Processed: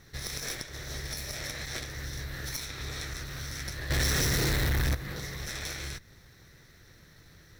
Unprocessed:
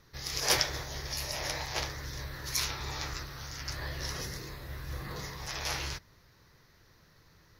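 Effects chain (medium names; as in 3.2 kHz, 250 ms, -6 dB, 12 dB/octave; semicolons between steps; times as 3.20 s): comb filter that takes the minimum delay 0.53 ms; compression 16:1, threshold -40 dBFS, peak gain reduction 18.5 dB; 3.90–4.95 s: waveshaping leveller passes 5; trim +7 dB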